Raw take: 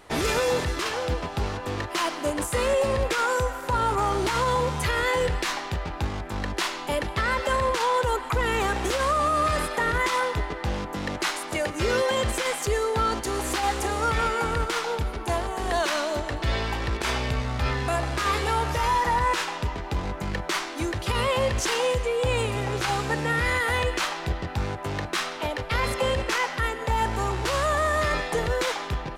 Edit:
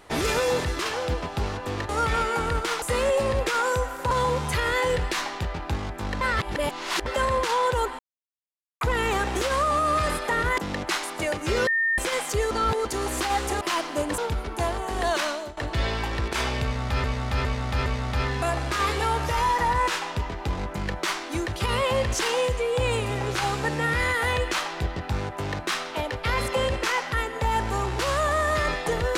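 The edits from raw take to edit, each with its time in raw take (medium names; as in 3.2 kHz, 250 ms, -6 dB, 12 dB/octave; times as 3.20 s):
1.89–2.46 s: swap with 13.94–14.87 s
3.75–4.42 s: delete
6.52–7.37 s: reverse
8.30 s: insert silence 0.82 s
10.07–10.91 s: delete
12.00–12.31 s: bleep 1.82 kHz -20 dBFS
12.84–13.18 s: reverse
15.91–16.26 s: fade out, to -17.5 dB
17.32–17.73 s: loop, 4 plays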